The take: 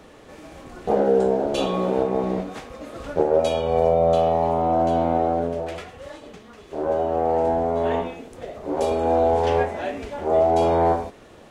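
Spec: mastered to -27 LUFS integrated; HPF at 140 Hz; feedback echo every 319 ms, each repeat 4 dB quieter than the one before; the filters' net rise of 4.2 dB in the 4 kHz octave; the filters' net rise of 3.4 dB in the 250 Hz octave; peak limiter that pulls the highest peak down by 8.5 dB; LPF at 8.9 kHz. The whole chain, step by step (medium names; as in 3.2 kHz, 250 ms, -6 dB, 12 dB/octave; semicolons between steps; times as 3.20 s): high-pass 140 Hz; low-pass 8.9 kHz; peaking EQ 250 Hz +5 dB; peaking EQ 4 kHz +5.5 dB; peak limiter -14 dBFS; feedback delay 319 ms, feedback 63%, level -4 dB; trim -4.5 dB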